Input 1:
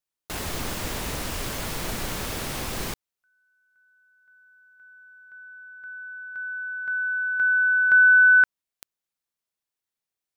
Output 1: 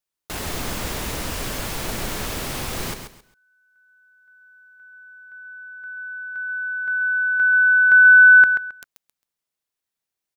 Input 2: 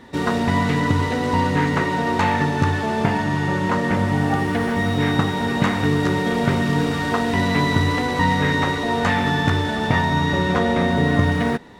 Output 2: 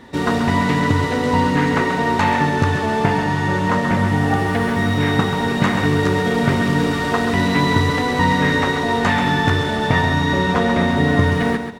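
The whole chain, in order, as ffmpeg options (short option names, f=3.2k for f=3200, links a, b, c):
-af "aecho=1:1:134|268|402:0.398|0.0955|0.0229,volume=2dB"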